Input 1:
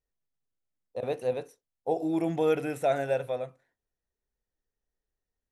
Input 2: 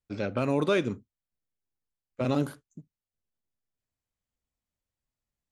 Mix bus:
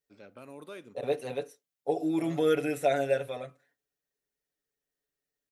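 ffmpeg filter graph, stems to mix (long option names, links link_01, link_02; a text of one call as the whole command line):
ffmpeg -i stem1.wav -i stem2.wav -filter_complex "[0:a]equalizer=frequency=920:width_type=o:width=0.71:gain=-7,aecho=1:1:7:0.99,volume=0dB[link_01];[1:a]aexciter=amount=3.7:drive=8.9:freq=9000,volume=-18dB[link_02];[link_01][link_02]amix=inputs=2:normalize=0,highpass=frequency=290:poles=1" out.wav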